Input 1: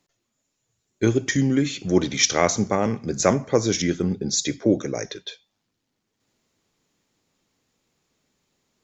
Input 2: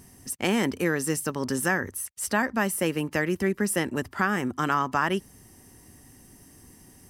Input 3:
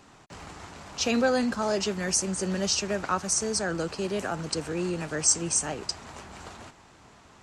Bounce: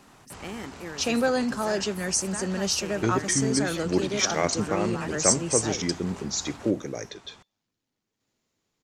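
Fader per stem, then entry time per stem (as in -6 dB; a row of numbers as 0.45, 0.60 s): -6.0, -13.5, 0.0 dB; 2.00, 0.00, 0.00 s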